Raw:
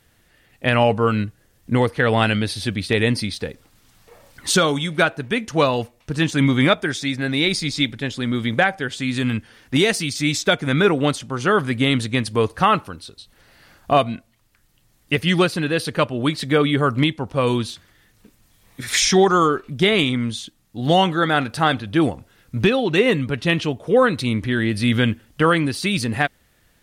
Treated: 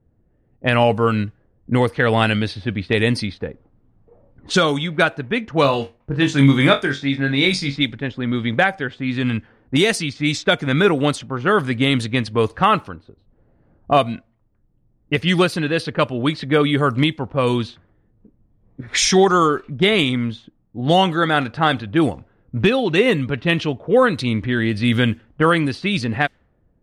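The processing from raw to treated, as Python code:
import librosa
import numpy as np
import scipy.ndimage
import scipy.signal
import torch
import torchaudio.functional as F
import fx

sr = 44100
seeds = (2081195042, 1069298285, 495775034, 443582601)

y = fx.env_lowpass(x, sr, base_hz=420.0, full_db=-14.0)
y = fx.room_flutter(y, sr, wall_m=3.7, rt60_s=0.2, at=(5.62, 7.76))
y = y * 10.0 ** (1.0 / 20.0)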